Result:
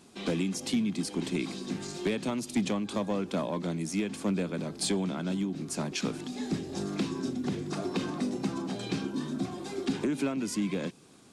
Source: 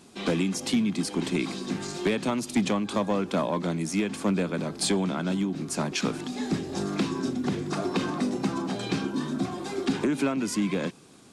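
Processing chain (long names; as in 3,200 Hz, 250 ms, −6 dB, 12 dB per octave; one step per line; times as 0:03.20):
dynamic equaliser 1,200 Hz, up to −4 dB, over −44 dBFS, Q 0.79
level −3.5 dB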